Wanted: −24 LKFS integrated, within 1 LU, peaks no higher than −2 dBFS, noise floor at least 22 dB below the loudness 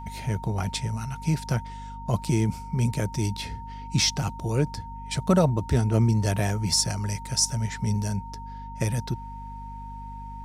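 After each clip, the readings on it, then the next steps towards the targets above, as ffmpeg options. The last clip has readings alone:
mains hum 50 Hz; hum harmonics up to 250 Hz; level of the hum −39 dBFS; interfering tone 920 Hz; level of the tone −39 dBFS; integrated loudness −26.5 LKFS; sample peak −9.0 dBFS; target loudness −24.0 LKFS
→ -af "bandreject=frequency=50:width_type=h:width=6,bandreject=frequency=100:width_type=h:width=6,bandreject=frequency=150:width_type=h:width=6,bandreject=frequency=200:width_type=h:width=6,bandreject=frequency=250:width_type=h:width=6"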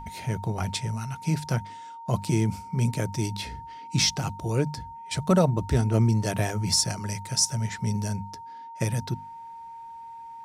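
mains hum none found; interfering tone 920 Hz; level of the tone −39 dBFS
→ -af "bandreject=frequency=920:width=30"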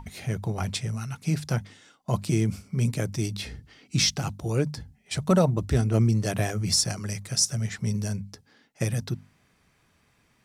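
interfering tone none found; integrated loudness −27.0 LKFS; sample peak −9.5 dBFS; target loudness −24.0 LKFS
→ -af "volume=3dB"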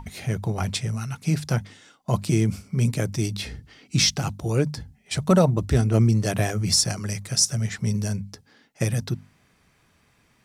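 integrated loudness −24.0 LKFS; sample peak −6.5 dBFS; background noise floor −63 dBFS

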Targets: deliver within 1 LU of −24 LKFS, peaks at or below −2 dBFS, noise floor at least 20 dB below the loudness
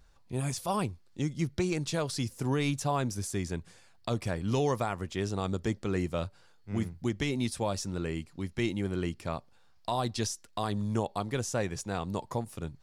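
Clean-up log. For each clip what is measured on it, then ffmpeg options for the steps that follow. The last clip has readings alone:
integrated loudness −33.0 LKFS; sample peak −19.0 dBFS; target loudness −24.0 LKFS
→ -af "volume=9dB"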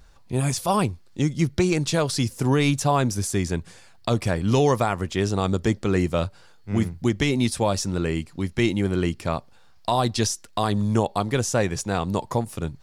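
integrated loudness −24.0 LKFS; sample peak −10.0 dBFS; background noise floor −50 dBFS

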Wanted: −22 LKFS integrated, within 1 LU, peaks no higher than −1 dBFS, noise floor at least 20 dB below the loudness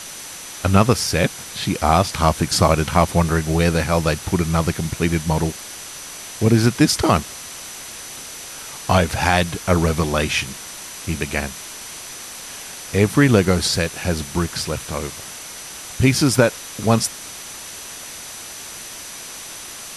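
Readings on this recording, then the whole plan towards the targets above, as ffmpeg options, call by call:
interfering tone 6,000 Hz; level of the tone −40 dBFS; background noise floor −35 dBFS; target noise floor −39 dBFS; integrated loudness −19.0 LKFS; sample peak −1.0 dBFS; target loudness −22.0 LKFS
→ -af "bandreject=frequency=6000:width=30"
-af "afftdn=noise_reduction=6:noise_floor=-35"
-af "volume=-3dB"

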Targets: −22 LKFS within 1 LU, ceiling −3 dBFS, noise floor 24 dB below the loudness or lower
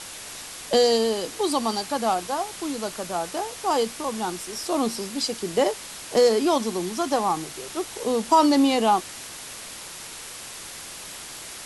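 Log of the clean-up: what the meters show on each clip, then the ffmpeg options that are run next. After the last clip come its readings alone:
background noise floor −39 dBFS; target noise floor −48 dBFS; integrated loudness −24.0 LKFS; sample peak −7.0 dBFS; target loudness −22.0 LKFS
→ -af "afftdn=noise_reduction=9:noise_floor=-39"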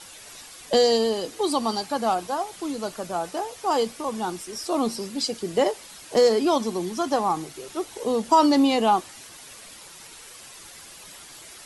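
background noise floor −45 dBFS; target noise floor −48 dBFS
→ -af "afftdn=noise_reduction=6:noise_floor=-45"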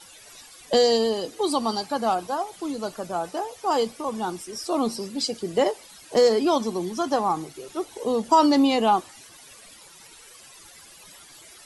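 background noise floor −49 dBFS; integrated loudness −24.0 LKFS; sample peak −7.0 dBFS; target loudness −22.0 LKFS
→ -af "volume=2dB"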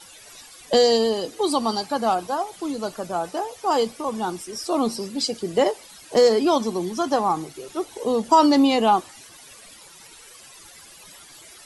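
integrated loudness −22.0 LKFS; sample peak −5.0 dBFS; background noise floor −47 dBFS

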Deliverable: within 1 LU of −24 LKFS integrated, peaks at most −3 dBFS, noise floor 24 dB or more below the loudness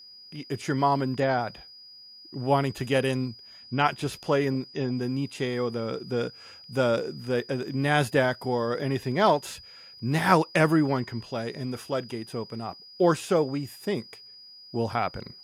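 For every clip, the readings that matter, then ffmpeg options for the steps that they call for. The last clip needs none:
interfering tone 4,900 Hz; level of the tone −46 dBFS; integrated loudness −27.0 LKFS; sample peak −5.0 dBFS; target loudness −24.0 LKFS
→ -af "bandreject=frequency=4900:width=30"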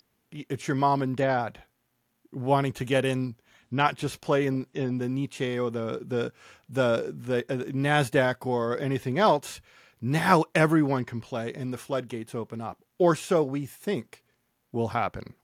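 interfering tone none found; integrated loudness −27.0 LKFS; sample peak −5.0 dBFS; target loudness −24.0 LKFS
→ -af "volume=3dB,alimiter=limit=-3dB:level=0:latency=1"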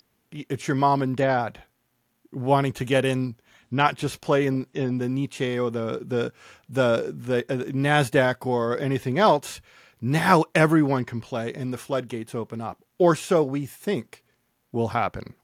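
integrated loudness −24.0 LKFS; sample peak −3.0 dBFS; background noise floor −71 dBFS

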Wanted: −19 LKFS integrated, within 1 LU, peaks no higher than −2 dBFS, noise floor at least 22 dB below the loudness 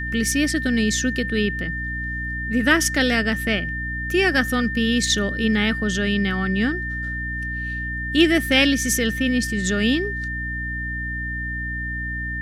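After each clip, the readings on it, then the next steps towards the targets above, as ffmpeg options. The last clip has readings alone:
mains hum 60 Hz; hum harmonics up to 300 Hz; level of the hum −28 dBFS; interfering tone 1,800 Hz; level of the tone −27 dBFS; integrated loudness −21.5 LKFS; sample peak −4.0 dBFS; target loudness −19.0 LKFS
→ -af "bandreject=frequency=60:width_type=h:width=6,bandreject=frequency=120:width_type=h:width=6,bandreject=frequency=180:width_type=h:width=6,bandreject=frequency=240:width_type=h:width=6,bandreject=frequency=300:width_type=h:width=6"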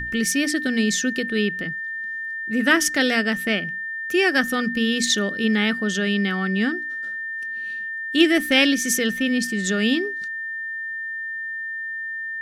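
mains hum none found; interfering tone 1,800 Hz; level of the tone −27 dBFS
→ -af "bandreject=frequency=1800:width=30"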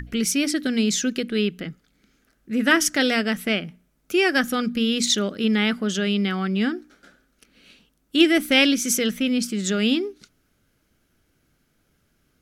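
interfering tone none found; integrated loudness −21.5 LKFS; sample peak −3.5 dBFS; target loudness −19.0 LKFS
→ -af "volume=2.5dB,alimiter=limit=-2dB:level=0:latency=1"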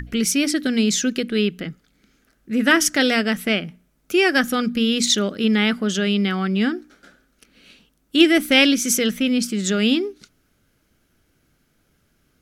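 integrated loudness −19.0 LKFS; sample peak −2.0 dBFS; background noise floor −65 dBFS

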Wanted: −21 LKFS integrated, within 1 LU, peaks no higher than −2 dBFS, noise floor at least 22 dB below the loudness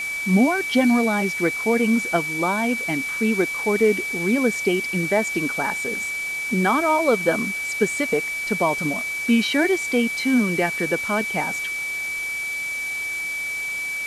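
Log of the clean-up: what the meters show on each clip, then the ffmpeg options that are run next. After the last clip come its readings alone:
interfering tone 2,300 Hz; level of the tone −25 dBFS; background noise floor −28 dBFS; target noise floor −44 dBFS; integrated loudness −21.5 LKFS; sample peak −6.5 dBFS; target loudness −21.0 LKFS
→ -af "bandreject=frequency=2300:width=30"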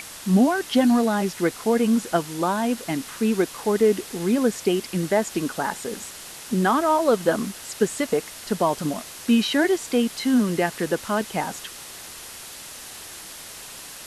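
interfering tone none found; background noise floor −40 dBFS; target noise floor −45 dBFS
→ -af "afftdn=noise_reduction=6:noise_floor=-40"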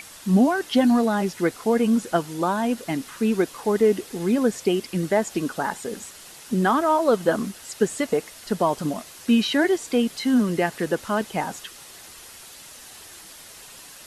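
background noise floor −44 dBFS; target noise floor −45 dBFS
→ -af "afftdn=noise_reduction=6:noise_floor=-44"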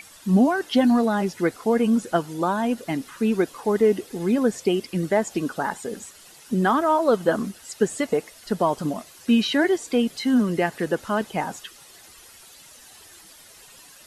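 background noise floor −49 dBFS; integrated loudness −23.0 LKFS; sample peak −7.5 dBFS; target loudness −21.0 LKFS
→ -af "volume=2dB"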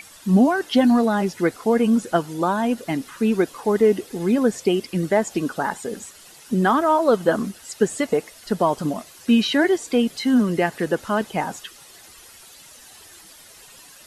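integrated loudness −21.0 LKFS; sample peak −5.5 dBFS; background noise floor −47 dBFS

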